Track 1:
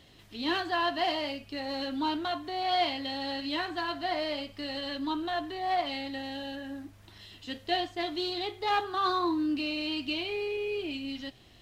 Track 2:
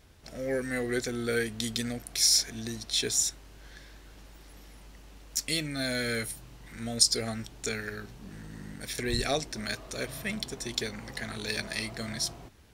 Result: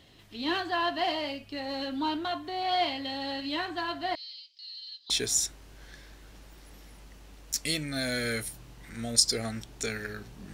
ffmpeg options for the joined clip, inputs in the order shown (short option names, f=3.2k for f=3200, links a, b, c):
-filter_complex "[0:a]asettb=1/sr,asplit=3[a][b][c];[a]atrim=end=4.154[d];[b]atrim=start=4.15:end=5.1,asetpts=PTS-STARTPTS,afade=t=in:d=0.004:c=qsin,afade=t=out:st=0.946:d=0.004:c=qsin,asuperpass=centerf=4600:order=4:qfactor=2.4[e];[c]atrim=start=5.096[f];[d][e]acrossfade=d=0.004:c1=hsin:c2=qsin[g];[g][f]acrossfade=d=0.004:c1=qsin:c2=hsin,apad=whole_dur=10.53,atrim=end=10.53,atrim=end=5.102[h];[1:a]atrim=start=2.928:end=8.36[i];[h][i]acrossfade=d=0.004:c1=hsin:c2=hsin"